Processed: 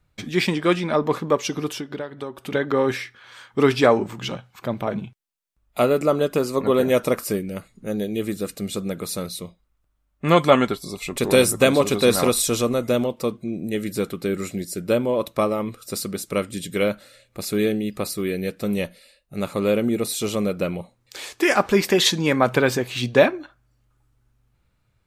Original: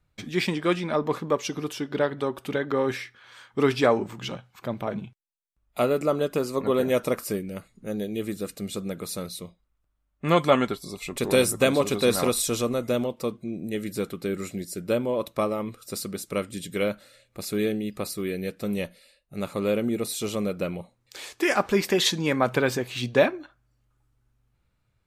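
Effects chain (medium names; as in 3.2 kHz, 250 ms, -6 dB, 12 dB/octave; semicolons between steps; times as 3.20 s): 1.76–2.52 s: compression 6:1, threshold -33 dBFS, peak gain reduction 14 dB; trim +4.5 dB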